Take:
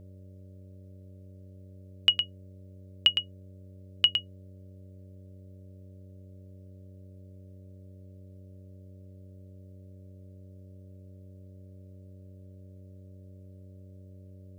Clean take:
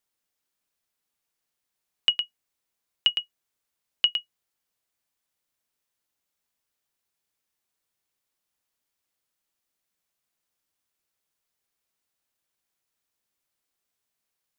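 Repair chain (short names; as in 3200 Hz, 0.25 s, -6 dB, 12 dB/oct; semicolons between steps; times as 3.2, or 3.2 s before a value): de-hum 94.1 Hz, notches 6; notch 600 Hz, Q 30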